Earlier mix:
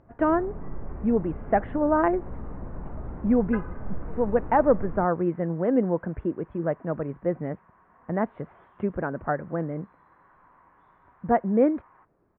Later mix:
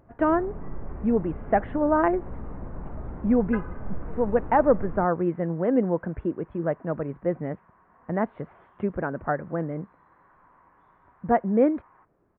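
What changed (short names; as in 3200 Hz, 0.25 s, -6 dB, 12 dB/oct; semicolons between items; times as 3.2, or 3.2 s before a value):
second sound: add air absorption 230 m; master: remove air absorption 120 m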